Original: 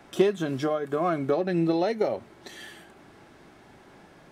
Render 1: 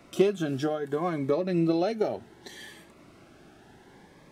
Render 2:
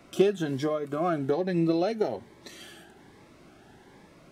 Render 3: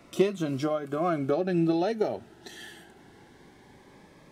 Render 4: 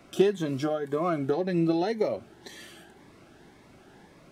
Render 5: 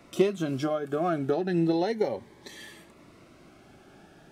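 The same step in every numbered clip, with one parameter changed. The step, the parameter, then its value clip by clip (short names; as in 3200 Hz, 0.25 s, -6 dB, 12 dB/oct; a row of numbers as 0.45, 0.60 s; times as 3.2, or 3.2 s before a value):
cascading phaser, rate: 0.67, 1.2, 0.2, 1.9, 0.33 Hz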